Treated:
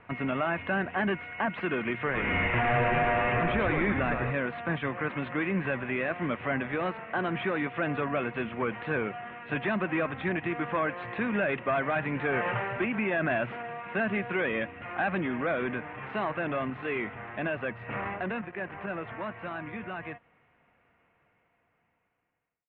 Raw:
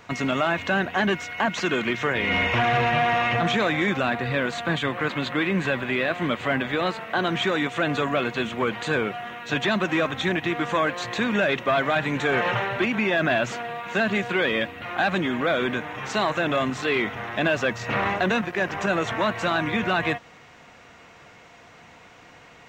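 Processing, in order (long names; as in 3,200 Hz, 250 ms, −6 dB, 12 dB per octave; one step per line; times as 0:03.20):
fade-out on the ending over 7.46 s
Butterworth low-pass 2,700 Hz 36 dB per octave
low-shelf EQ 140 Hz +3 dB
0:01.96–0:04.31: echo with shifted repeats 109 ms, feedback 60%, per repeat −110 Hz, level −5 dB
level −6 dB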